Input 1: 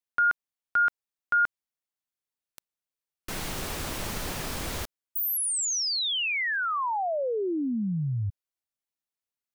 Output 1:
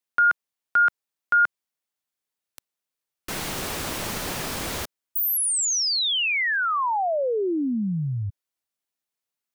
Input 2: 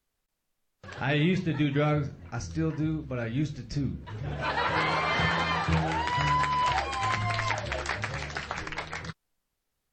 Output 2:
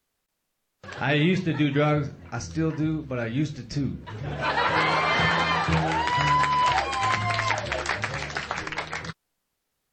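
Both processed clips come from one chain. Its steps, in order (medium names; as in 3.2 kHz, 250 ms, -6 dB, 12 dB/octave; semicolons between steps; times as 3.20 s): bass shelf 78 Hz -10.5 dB; trim +4.5 dB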